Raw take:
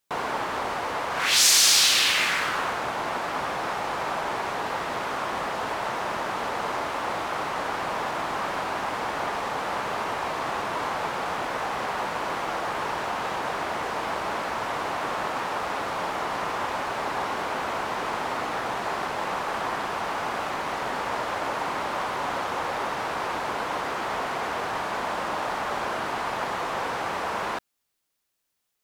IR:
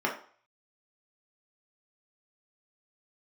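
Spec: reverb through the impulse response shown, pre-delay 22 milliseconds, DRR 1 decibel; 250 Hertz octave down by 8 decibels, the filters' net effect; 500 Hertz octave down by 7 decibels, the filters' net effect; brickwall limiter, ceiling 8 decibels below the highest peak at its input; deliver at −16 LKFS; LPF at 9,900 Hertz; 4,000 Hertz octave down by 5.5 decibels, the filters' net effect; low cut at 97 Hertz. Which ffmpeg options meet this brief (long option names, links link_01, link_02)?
-filter_complex "[0:a]highpass=97,lowpass=9900,equalizer=frequency=250:width_type=o:gain=-8,equalizer=frequency=500:width_type=o:gain=-7.5,equalizer=frequency=4000:width_type=o:gain=-7,alimiter=limit=-17dB:level=0:latency=1,asplit=2[link_01][link_02];[1:a]atrim=start_sample=2205,adelay=22[link_03];[link_02][link_03]afir=irnorm=-1:irlink=0,volume=-11.5dB[link_04];[link_01][link_04]amix=inputs=2:normalize=0,volume=12.5dB"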